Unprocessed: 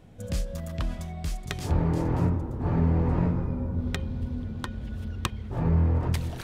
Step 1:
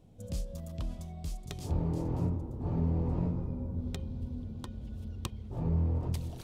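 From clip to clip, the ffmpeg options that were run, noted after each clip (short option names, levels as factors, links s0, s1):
-af "equalizer=f=1700:t=o:w=1.2:g=-12.5,volume=0.473"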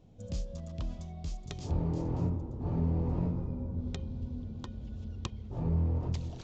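-af "aresample=16000,aresample=44100"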